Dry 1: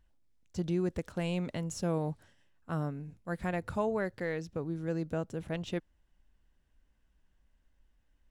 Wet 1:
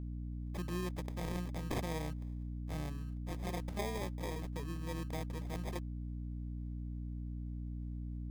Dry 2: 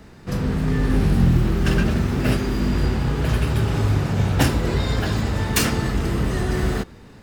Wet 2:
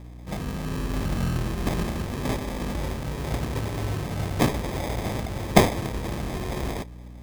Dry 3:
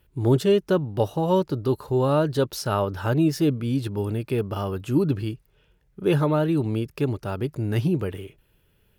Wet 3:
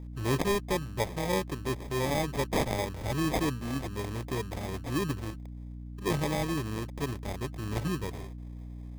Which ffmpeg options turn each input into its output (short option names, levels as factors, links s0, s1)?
-af "crystalizer=i=6.5:c=0,acrusher=samples=31:mix=1:aa=0.000001,aeval=exprs='val(0)+0.0316*(sin(2*PI*60*n/s)+sin(2*PI*2*60*n/s)/2+sin(2*PI*3*60*n/s)/3+sin(2*PI*4*60*n/s)/4+sin(2*PI*5*60*n/s)/5)':c=same,volume=0.316"